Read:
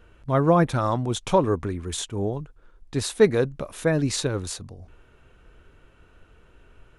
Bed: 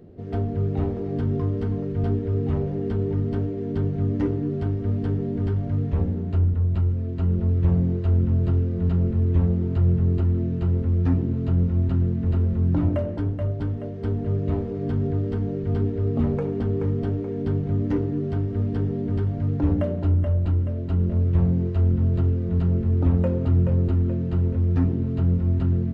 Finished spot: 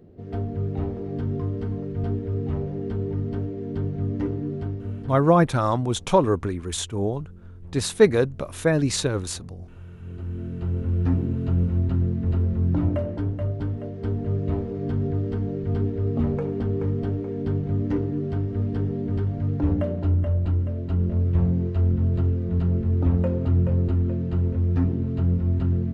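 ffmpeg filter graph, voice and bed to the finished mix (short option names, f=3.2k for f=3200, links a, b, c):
-filter_complex "[0:a]adelay=4800,volume=1.5dB[a];[1:a]volume=19dB,afade=t=out:st=4.52:d=0.87:silence=0.1,afade=t=in:st=9.98:d=1.1:silence=0.0794328[b];[a][b]amix=inputs=2:normalize=0"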